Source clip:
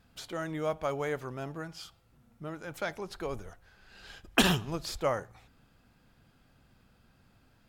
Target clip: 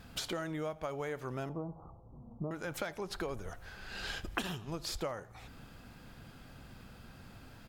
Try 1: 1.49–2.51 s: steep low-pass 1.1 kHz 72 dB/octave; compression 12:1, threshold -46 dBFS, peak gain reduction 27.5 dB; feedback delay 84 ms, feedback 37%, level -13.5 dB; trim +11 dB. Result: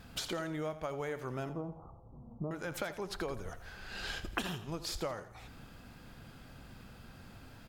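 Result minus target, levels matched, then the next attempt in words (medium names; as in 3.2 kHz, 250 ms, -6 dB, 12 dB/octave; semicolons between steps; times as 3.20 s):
echo-to-direct +9.5 dB
1.49–2.51 s: steep low-pass 1.1 kHz 72 dB/octave; compression 12:1, threshold -46 dBFS, peak gain reduction 27.5 dB; feedback delay 84 ms, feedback 37%, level -23 dB; trim +11 dB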